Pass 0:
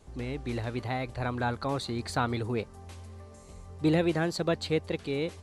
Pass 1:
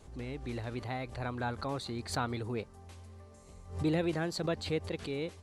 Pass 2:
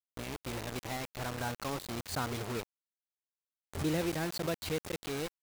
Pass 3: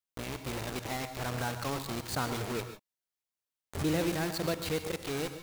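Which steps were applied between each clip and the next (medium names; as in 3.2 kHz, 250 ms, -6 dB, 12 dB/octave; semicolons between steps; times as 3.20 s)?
swell ahead of each attack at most 120 dB/s; trim -5.5 dB
word length cut 6-bit, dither none; trim -2 dB
gated-style reverb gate 170 ms rising, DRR 9 dB; trim +2 dB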